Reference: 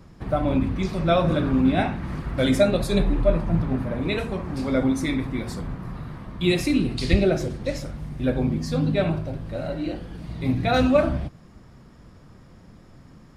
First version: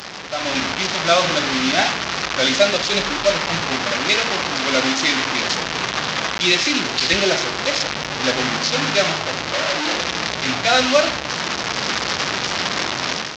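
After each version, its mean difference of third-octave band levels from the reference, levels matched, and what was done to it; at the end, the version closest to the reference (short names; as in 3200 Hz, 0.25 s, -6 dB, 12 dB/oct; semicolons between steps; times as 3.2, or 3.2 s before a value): 13.5 dB: delta modulation 32 kbps, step -20 dBFS; HPF 1500 Hz 6 dB/oct; AGC gain up to 11.5 dB; gain +1.5 dB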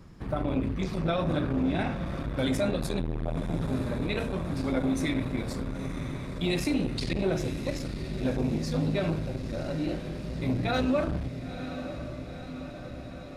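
6.0 dB: bell 710 Hz -3 dB 0.77 oct; limiter -15.5 dBFS, peak gain reduction 9.5 dB; diffused feedback echo 0.978 s, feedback 66%, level -11 dB; core saturation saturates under 260 Hz; gain -2 dB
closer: second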